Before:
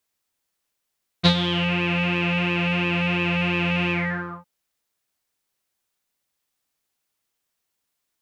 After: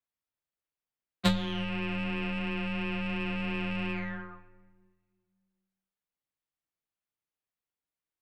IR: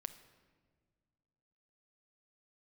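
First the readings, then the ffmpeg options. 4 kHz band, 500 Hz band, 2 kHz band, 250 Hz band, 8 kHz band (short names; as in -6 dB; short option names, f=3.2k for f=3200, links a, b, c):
-12.5 dB, -10.0 dB, -12.0 dB, -7.5 dB, n/a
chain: -filter_complex "[0:a]aeval=exprs='0.596*(cos(1*acos(clip(val(0)/0.596,-1,1)))-cos(1*PI/2))+0.15*(cos(3*acos(clip(val(0)/0.596,-1,1)))-cos(3*PI/2))+0.0168*(cos(6*acos(clip(val(0)/0.596,-1,1)))-cos(6*PI/2))+0.0211*(cos(8*acos(clip(val(0)/0.596,-1,1)))-cos(8*PI/2))':c=same,afreqshift=17,asplit=2[a][b];[1:a]atrim=start_sample=2205,lowpass=3.5k,lowshelf=f=160:g=7[c];[b][c]afir=irnorm=-1:irlink=0,volume=6.5dB[d];[a][d]amix=inputs=2:normalize=0,volume=-8.5dB"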